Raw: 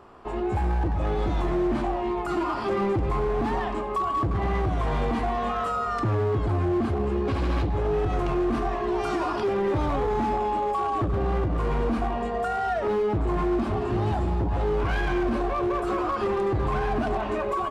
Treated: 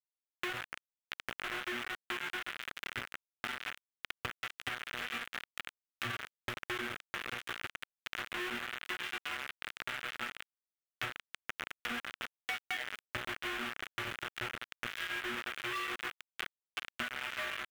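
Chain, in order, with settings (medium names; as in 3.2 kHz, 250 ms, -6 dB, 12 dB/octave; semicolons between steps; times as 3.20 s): random holes in the spectrogram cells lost 28%; in parallel at -2 dB: peak limiter -30 dBFS, peak gain reduction 11.5 dB; on the sum: inharmonic resonator 120 Hz, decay 0.81 s, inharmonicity 0.002; word length cut 6-bit, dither none; bass shelf 180 Hz -3.5 dB; saturation -34 dBFS, distortion -21 dB; high-order bell 2.1 kHz +13 dB; compression 6:1, threshold -44 dBFS, peak gain reduction 13.5 dB; trim +8.5 dB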